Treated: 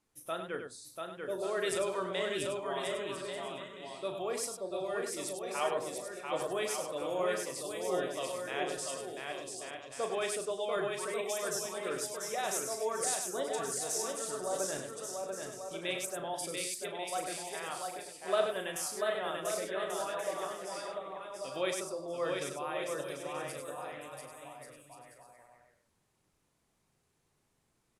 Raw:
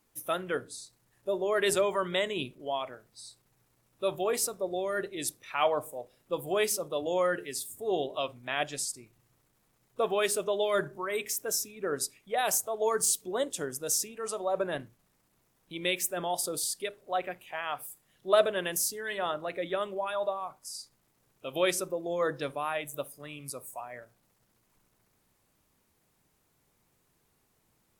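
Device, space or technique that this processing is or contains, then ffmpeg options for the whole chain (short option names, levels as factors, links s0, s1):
slapback doubling: -filter_complex "[0:a]asplit=3[s0][s1][s2];[s1]adelay=37,volume=0.398[s3];[s2]adelay=100,volume=0.447[s4];[s0][s3][s4]amix=inputs=3:normalize=0,lowpass=f=11000:w=0.5412,lowpass=f=11000:w=1.3066,aecho=1:1:690|1138|1430|1620|1743:0.631|0.398|0.251|0.158|0.1,volume=0.422"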